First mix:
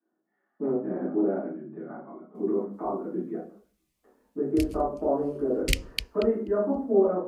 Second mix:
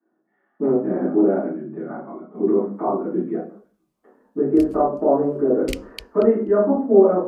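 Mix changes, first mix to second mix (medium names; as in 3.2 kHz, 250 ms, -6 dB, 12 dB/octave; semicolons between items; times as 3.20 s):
speech: send +8.5 dB; background -5.5 dB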